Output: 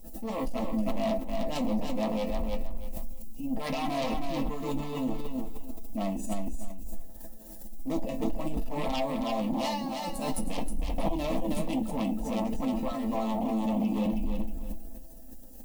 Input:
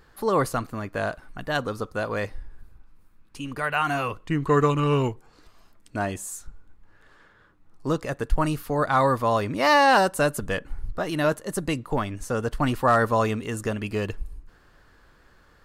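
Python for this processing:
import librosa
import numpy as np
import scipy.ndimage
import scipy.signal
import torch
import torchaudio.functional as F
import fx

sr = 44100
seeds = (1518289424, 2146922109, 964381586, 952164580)

y = fx.wiener(x, sr, points=41)
y = fx.highpass(y, sr, hz=47.0, slope=12, at=(11.82, 14.19))
y = fx.over_compress(y, sr, threshold_db=-26.0, ratio=-0.5)
y = fx.transient(y, sr, attack_db=-8, sustain_db=11)
y = fx.dmg_noise_colour(y, sr, seeds[0], colour='violet', level_db=-61.0)
y = fx.resonator_bank(y, sr, root=57, chord='minor', decay_s=0.21)
y = fx.fold_sine(y, sr, drive_db=17, ceiling_db=-22.0)
y = fx.fixed_phaser(y, sr, hz=400.0, stages=6)
y = fx.echo_feedback(y, sr, ms=317, feedback_pct=25, wet_db=-5)
y = fx.pre_swell(y, sr, db_per_s=55.0)
y = y * 10.0 ** (-2.5 / 20.0)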